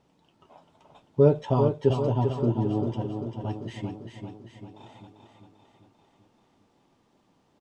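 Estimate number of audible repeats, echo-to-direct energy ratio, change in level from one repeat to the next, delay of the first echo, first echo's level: 6, -5.0 dB, -5.0 dB, 394 ms, -6.5 dB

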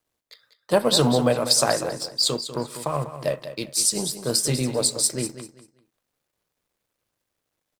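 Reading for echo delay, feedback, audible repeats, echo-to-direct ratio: 195 ms, 25%, 2, -11.0 dB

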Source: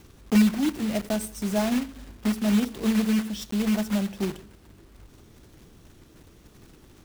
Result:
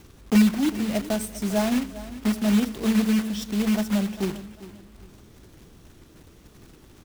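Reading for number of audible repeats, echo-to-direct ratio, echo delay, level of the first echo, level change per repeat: 2, -15.5 dB, 399 ms, -16.0 dB, -10.0 dB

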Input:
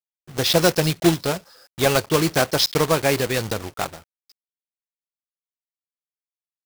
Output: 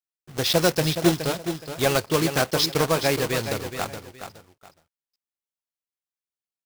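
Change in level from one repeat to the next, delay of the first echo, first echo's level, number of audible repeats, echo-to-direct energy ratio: -11.5 dB, 420 ms, -9.0 dB, 2, -8.5 dB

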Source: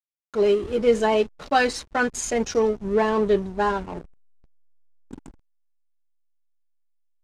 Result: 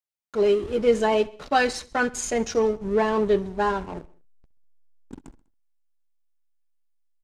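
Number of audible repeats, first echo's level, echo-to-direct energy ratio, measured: 3, -21.5 dB, -20.0 dB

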